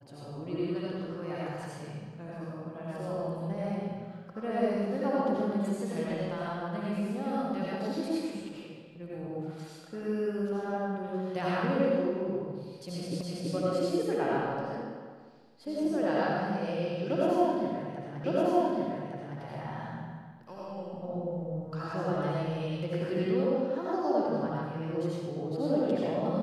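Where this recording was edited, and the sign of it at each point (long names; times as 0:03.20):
0:13.21: the same again, the last 0.33 s
0:18.24: the same again, the last 1.16 s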